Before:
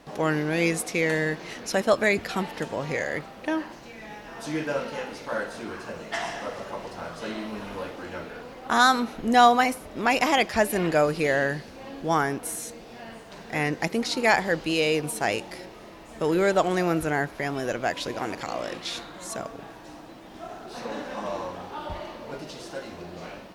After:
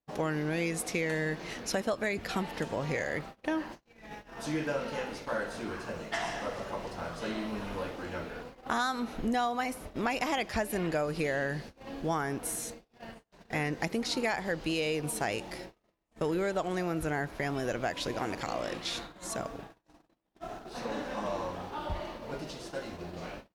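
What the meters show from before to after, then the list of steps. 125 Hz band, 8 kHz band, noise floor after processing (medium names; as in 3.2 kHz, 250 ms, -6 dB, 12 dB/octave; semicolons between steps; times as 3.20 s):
-4.0 dB, -5.0 dB, -70 dBFS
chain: gate -40 dBFS, range -38 dB; bass shelf 100 Hz +8 dB; compression 6:1, threshold -25 dBFS, peak gain reduction 13 dB; trim -2.5 dB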